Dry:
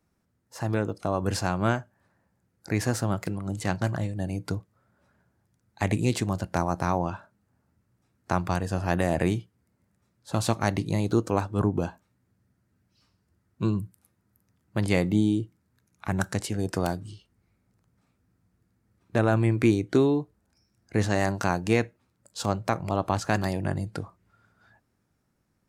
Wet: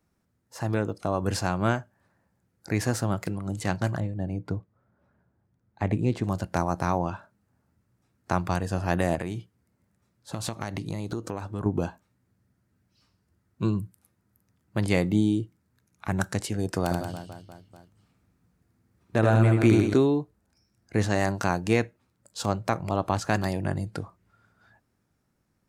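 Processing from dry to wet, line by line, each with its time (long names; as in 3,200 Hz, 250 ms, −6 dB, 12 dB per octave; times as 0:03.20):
0:04.00–0:06.24: low-pass filter 1,100 Hz 6 dB per octave
0:09.15–0:11.66: downward compressor, threshold −27 dBFS
0:16.83–0:19.94: reverse bouncing-ball delay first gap 80 ms, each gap 1.25×, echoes 6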